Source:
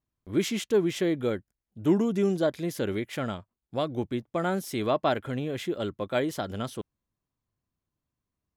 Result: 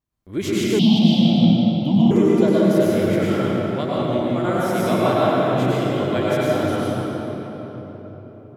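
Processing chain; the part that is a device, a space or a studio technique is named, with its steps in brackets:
cathedral (convolution reverb RT60 4.3 s, pre-delay 91 ms, DRR −8 dB)
0:00.79–0:02.11: drawn EQ curve 100 Hz 0 dB, 160 Hz +7 dB, 240 Hz +12 dB, 410 Hz −25 dB, 720 Hz +11 dB, 1,700 Hz −30 dB, 3,000 Hz +10 dB, 4,600 Hz +9 dB, 7,100 Hz −14 dB, 12,000 Hz −9 dB

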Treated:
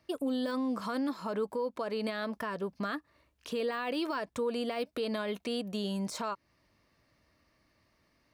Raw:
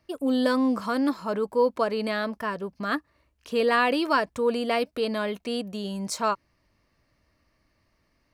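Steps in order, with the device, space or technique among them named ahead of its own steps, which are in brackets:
broadcast voice chain (high-pass filter 88 Hz 6 dB per octave; de-essing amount 75%; downward compressor 3 to 1, threshold −30 dBFS, peak gain reduction 10 dB; parametric band 3,600 Hz +3.5 dB 0.21 octaves; brickwall limiter −25 dBFS, peak gain reduction 6.5 dB)

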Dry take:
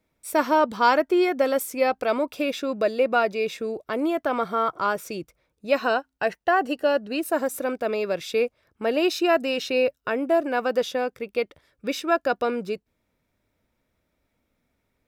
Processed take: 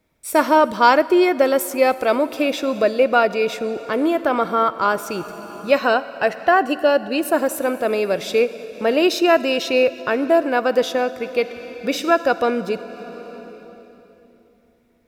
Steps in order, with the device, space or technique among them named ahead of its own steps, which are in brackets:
compressed reverb return (on a send at −4 dB: convolution reverb RT60 3.1 s, pre-delay 39 ms + downward compressor 10 to 1, threshold −31 dBFS, peak gain reduction 15.5 dB)
on the sum: level +5.5 dB

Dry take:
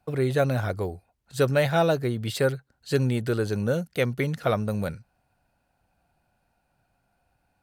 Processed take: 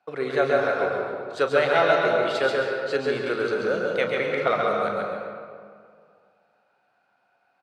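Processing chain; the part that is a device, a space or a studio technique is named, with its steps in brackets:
station announcement (band-pass filter 440–4,100 Hz; parametric band 1,300 Hz +5 dB 0.31 octaves; loudspeakers that aren't time-aligned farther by 12 metres −11 dB, 47 metres −4 dB; convolution reverb RT60 2.1 s, pre-delay 113 ms, DRR 1 dB)
level +1.5 dB

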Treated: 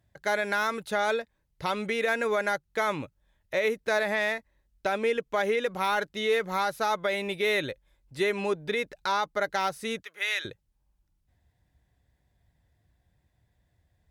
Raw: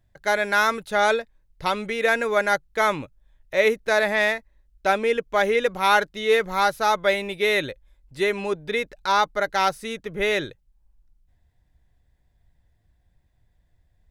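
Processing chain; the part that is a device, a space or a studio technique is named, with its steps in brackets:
0:10.02–0:10.45: high-pass filter 1,500 Hz 12 dB per octave
podcast mastering chain (high-pass filter 68 Hz 12 dB per octave; de-essing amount 50%; downward compressor 2 to 1, threshold −24 dBFS, peak gain reduction 6 dB; brickwall limiter −16.5 dBFS, peak gain reduction 5 dB; MP3 112 kbit/s 44,100 Hz)

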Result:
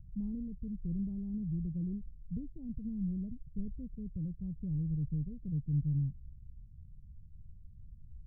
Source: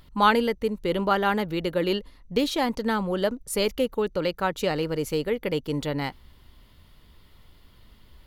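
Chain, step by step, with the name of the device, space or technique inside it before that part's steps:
the neighbour's flat through the wall (low-pass filter 150 Hz 24 dB per octave; parametric band 150 Hz +3 dB)
level +2.5 dB

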